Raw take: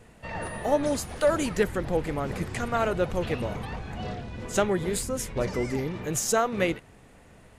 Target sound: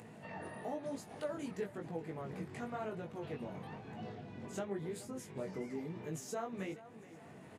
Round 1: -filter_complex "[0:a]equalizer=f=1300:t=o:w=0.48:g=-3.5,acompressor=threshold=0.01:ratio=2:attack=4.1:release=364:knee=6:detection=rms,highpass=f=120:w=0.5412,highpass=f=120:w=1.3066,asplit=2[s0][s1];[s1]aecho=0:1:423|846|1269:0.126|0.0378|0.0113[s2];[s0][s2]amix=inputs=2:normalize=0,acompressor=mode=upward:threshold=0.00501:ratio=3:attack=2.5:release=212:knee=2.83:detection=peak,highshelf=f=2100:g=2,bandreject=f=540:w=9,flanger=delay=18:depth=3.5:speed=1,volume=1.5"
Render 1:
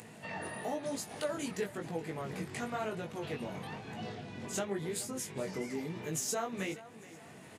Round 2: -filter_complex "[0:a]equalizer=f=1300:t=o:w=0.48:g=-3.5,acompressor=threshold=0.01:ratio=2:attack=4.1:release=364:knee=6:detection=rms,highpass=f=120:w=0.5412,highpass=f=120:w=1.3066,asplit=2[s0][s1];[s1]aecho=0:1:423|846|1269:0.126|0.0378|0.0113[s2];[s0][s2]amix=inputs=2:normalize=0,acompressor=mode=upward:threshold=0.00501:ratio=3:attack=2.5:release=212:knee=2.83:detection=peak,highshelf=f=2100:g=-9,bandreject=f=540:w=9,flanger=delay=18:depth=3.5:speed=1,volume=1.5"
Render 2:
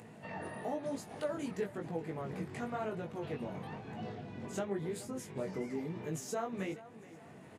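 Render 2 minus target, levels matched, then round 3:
compression: peak gain reduction -3.5 dB
-filter_complex "[0:a]equalizer=f=1300:t=o:w=0.48:g=-3.5,acompressor=threshold=0.00473:ratio=2:attack=4.1:release=364:knee=6:detection=rms,highpass=f=120:w=0.5412,highpass=f=120:w=1.3066,asplit=2[s0][s1];[s1]aecho=0:1:423|846|1269:0.126|0.0378|0.0113[s2];[s0][s2]amix=inputs=2:normalize=0,acompressor=mode=upward:threshold=0.00501:ratio=3:attack=2.5:release=212:knee=2.83:detection=peak,highshelf=f=2100:g=-9,bandreject=f=540:w=9,flanger=delay=18:depth=3.5:speed=1,volume=1.5"

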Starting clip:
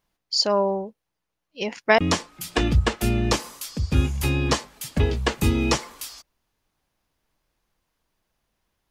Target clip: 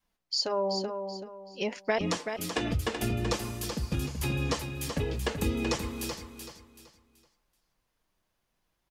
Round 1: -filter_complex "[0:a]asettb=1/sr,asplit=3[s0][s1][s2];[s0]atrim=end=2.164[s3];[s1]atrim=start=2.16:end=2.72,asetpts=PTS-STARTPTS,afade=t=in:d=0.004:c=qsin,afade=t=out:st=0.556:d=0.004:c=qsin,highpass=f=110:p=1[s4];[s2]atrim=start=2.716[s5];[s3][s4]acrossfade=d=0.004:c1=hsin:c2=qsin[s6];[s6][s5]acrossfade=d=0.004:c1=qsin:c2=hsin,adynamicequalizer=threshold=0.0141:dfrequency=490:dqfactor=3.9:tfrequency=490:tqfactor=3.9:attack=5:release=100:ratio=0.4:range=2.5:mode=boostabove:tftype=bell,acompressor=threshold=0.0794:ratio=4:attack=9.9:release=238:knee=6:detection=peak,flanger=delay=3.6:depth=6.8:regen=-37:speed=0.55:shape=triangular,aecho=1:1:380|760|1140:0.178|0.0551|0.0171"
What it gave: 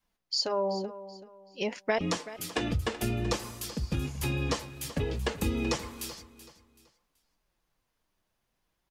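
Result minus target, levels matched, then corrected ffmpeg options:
echo-to-direct -8 dB
-filter_complex "[0:a]asettb=1/sr,asplit=3[s0][s1][s2];[s0]atrim=end=2.164[s3];[s1]atrim=start=2.16:end=2.72,asetpts=PTS-STARTPTS,afade=t=in:d=0.004:c=qsin,afade=t=out:st=0.556:d=0.004:c=qsin,highpass=f=110:p=1[s4];[s2]atrim=start=2.716[s5];[s3][s4]acrossfade=d=0.004:c1=hsin:c2=qsin[s6];[s6][s5]acrossfade=d=0.004:c1=qsin:c2=hsin,adynamicequalizer=threshold=0.0141:dfrequency=490:dqfactor=3.9:tfrequency=490:tqfactor=3.9:attack=5:release=100:ratio=0.4:range=2.5:mode=boostabove:tftype=bell,acompressor=threshold=0.0794:ratio=4:attack=9.9:release=238:knee=6:detection=peak,flanger=delay=3.6:depth=6.8:regen=-37:speed=0.55:shape=triangular,aecho=1:1:380|760|1140|1520:0.447|0.138|0.0429|0.0133"

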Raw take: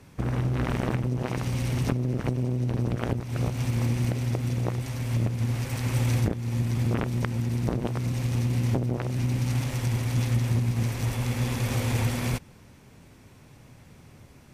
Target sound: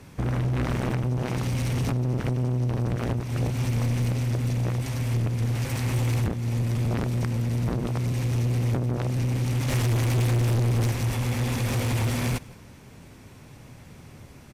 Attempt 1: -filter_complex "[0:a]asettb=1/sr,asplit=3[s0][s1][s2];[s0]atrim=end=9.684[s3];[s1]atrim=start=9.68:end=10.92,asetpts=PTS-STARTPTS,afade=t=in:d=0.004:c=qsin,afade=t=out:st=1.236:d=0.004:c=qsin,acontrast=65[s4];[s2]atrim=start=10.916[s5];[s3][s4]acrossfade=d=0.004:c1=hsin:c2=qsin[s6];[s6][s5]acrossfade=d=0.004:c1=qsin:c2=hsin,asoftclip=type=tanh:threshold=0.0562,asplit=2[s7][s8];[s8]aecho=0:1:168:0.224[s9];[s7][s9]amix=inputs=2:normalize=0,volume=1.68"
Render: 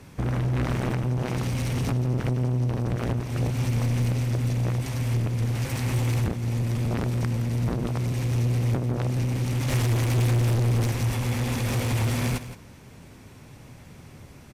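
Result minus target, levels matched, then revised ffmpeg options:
echo-to-direct +10 dB
-filter_complex "[0:a]asettb=1/sr,asplit=3[s0][s1][s2];[s0]atrim=end=9.684[s3];[s1]atrim=start=9.68:end=10.92,asetpts=PTS-STARTPTS,afade=t=in:d=0.004:c=qsin,afade=t=out:st=1.236:d=0.004:c=qsin,acontrast=65[s4];[s2]atrim=start=10.916[s5];[s3][s4]acrossfade=d=0.004:c1=hsin:c2=qsin[s6];[s6][s5]acrossfade=d=0.004:c1=qsin:c2=hsin,asoftclip=type=tanh:threshold=0.0562,asplit=2[s7][s8];[s8]aecho=0:1:168:0.0708[s9];[s7][s9]amix=inputs=2:normalize=0,volume=1.68"

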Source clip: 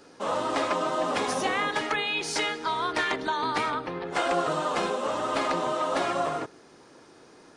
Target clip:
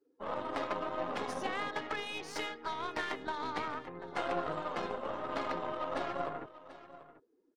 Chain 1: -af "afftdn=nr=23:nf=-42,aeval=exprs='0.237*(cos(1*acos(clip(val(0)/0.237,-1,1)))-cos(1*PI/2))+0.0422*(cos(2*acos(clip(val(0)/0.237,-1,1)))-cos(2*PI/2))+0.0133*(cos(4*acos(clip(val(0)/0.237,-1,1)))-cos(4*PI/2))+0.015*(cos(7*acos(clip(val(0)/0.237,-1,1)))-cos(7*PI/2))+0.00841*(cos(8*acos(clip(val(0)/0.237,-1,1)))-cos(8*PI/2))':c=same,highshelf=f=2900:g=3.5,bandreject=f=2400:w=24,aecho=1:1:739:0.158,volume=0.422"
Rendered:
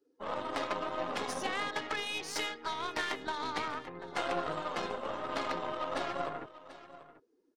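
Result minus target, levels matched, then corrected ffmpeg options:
8 kHz band +6.0 dB
-af "afftdn=nr=23:nf=-42,aeval=exprs='0.237*(cos(1*acos(clip(val(0)/0.237,-1,1)))-cos(1*PI/2))+0.0422*(cos(2*acos(clip(val(0)/0.237,-1,1)))-cos(2*PI/2))+0.0133*(cos(4*acos(clip(val(0)/0.237,-1,1)))-cos(4*PI/2))+0.015*(cos(7*acos(clip(val(0)/0.237,-1,1)))-cos(7*PI/2))+0.00841*(cos(8*acos(clip(val(0)/0.237,-1,1)))-cos(8*PI/2))':c=same,highshelf=f=2900:g=-5.5,bandreject=f=2400:w=24,aecho=1:1:739:0.158,volume=0.422"

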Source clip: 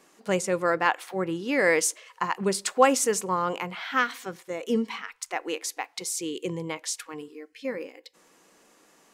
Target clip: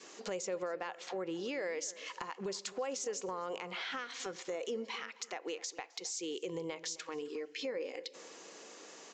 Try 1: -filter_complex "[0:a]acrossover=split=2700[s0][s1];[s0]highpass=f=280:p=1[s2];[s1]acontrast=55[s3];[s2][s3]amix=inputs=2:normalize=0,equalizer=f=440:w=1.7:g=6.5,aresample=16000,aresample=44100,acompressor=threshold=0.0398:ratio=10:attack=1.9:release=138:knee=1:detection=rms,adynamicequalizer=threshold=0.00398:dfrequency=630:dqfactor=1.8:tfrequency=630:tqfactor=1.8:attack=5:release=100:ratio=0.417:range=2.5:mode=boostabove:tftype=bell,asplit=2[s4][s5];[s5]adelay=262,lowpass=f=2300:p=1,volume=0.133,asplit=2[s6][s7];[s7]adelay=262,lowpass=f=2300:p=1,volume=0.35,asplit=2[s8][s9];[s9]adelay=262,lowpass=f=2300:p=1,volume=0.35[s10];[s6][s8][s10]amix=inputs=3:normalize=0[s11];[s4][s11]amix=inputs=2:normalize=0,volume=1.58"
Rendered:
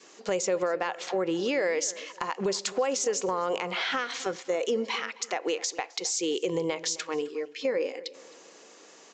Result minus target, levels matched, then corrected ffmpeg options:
compression: peak gain reduction -10.5 dB
-filter_complex "[0:a]acrossover=split=2700[s0][s1];[s0]highpass=f=280:p=1[s2];[s1]acontrast=55[s3];[s2][s3]amix=inputs=2:normalize=0,equalizer=f=440:w=1.7:g=6.5,aresample=16000,aresample=44100,acompressor=threshold=0.0106:ratio=10:attack=1.9:release=138:knee=1:detection=rms,adynamicequalizer=threshold=0.00398:dfrequency=630:dqfactor=1.8:tfrequency=630:tqfactor=1.8:attack=5:release=100:ratio=0.417:range=2.5:mode=boostabove:tftype=bell,asplit=2[s4][s5];[s5]adelay=262,lowpass=f=2300:p=1,volume=0.133,asplit=2[s6][s7];[s7]adelay=262,lowpass=f=2300:p=1,volume=0.35,asplit=2[s8][s9];[s9]adelay=262,lowpass=f=2300:p=1,volume=0.35[s10];[s6][s8][s10]amix=inputs=3:normalize=0[s11];[s4][s11]amix=inputs=2:normalize=0,volume=1.58"

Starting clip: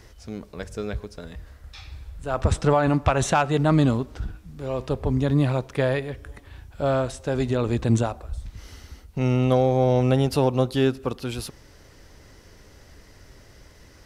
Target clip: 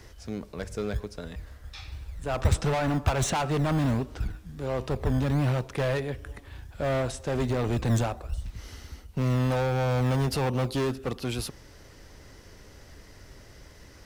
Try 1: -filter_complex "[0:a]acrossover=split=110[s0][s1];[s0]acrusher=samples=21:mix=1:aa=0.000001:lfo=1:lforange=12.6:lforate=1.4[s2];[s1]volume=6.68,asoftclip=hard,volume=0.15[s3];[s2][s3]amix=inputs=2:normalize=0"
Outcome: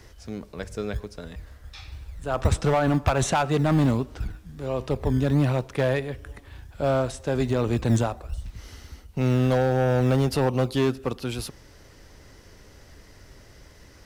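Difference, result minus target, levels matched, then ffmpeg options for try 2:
overload inside the chain: distortion -7 dB
-filter_complex "[0:a]acrossover=split=110[s0][s1];[s0]acrusher=samples=21:mix=1:aa=0.000001:lfo=1:lforange=12.6:lforate=1.4[s2];[s1]volume=16.8,asoftclip=hard,volume=0.0596[s3];[s2][s3]amix=inputs=2:normalize=0"

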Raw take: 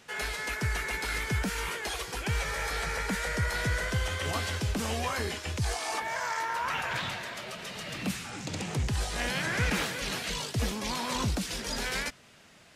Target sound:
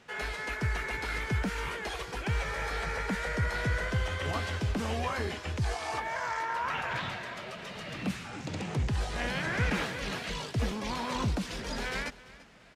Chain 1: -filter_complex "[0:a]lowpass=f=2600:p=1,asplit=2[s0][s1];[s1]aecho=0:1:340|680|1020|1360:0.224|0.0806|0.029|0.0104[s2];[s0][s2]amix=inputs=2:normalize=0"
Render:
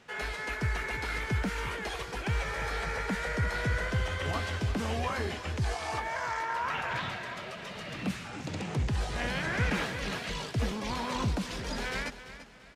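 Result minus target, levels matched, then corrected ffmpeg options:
echo-to-direct +6 dB
-filter_complex "[0:a]lowpass=f=2600:p=1,asplit=2[s0][s1];[s1]aecho=0:1:340|680|1020:0.112|0.0404|0.0145[s2];[s0][s2]amix=inputs=2:normalize=0"

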